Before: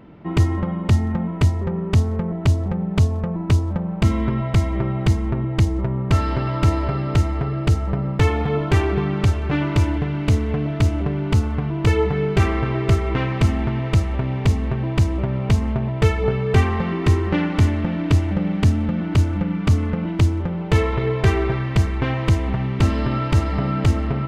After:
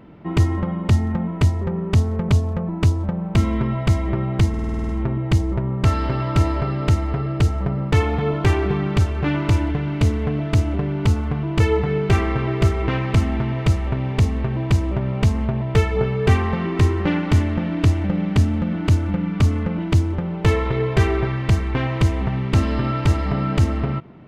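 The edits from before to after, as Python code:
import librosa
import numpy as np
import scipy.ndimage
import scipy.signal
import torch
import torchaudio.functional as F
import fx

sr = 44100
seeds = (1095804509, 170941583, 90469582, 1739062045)

y = fx.edit(x, sr, fx.cut(start_s=2.29, length_s=0.67),
    fx.stutter(start_s=5.16, slice_s=0.05, count=9), tone=tone)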